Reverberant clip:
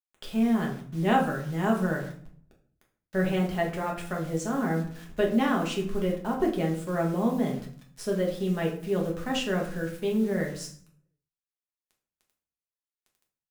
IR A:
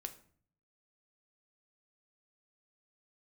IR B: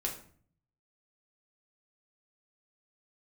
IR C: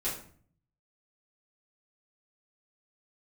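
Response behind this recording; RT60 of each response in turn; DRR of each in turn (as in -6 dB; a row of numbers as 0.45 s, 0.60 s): B; 0.50 s, 0.50 s, 0.50 s; 7.0 dB, -1.0 dB, -10.0 dB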